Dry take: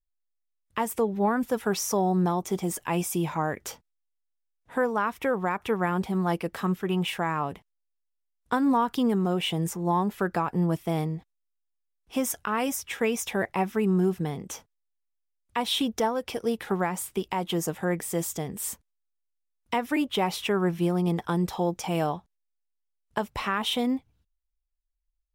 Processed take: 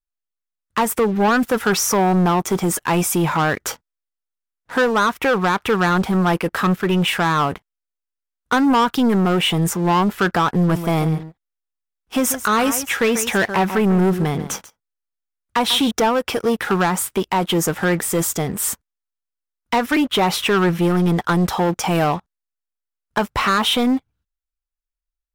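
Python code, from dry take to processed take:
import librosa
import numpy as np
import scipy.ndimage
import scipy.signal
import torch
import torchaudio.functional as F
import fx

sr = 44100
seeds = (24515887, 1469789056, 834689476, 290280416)

y = fx.echo_single(x, sr, ms=141, db=-13.5, at=(10.53, 15.91))
y = fx.peak_eq(y, sr, hz=1400.0, db=7.5, octaves=0.71)
y = fx.leveller(y, sr, passes=3)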